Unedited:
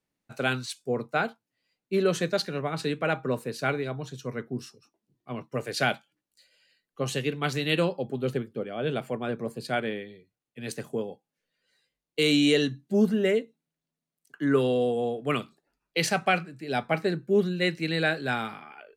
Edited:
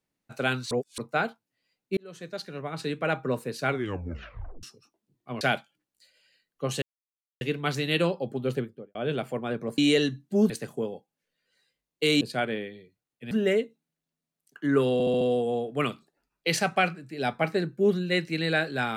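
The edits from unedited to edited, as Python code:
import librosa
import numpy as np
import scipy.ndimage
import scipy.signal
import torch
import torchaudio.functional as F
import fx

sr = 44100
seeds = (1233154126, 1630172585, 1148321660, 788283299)

y = fx.studio_fade_out(x, sr, start_s=8.37, length_s=0.36)
y = fx.edit(y, sr, fx.reverse_span(start_s=0.71, length_s=0.27),
    fx.fade_in_span(start_s=1.97, length_s=1.17),
    fx.tape_stop(start_s=3.69, length_s=0.94),
    fx.cut(start_s=5.41, length_s=0.37),
    fx.insert_silence(at_s=7.19, length_s=0.59),
    fx.swap(start_s=9.56, length_s=1.1, other_s=12.37, other_length_s=0.72),
    fx.stutter(start_s=14.71, slice_s=0.07, count=5), tone=tone)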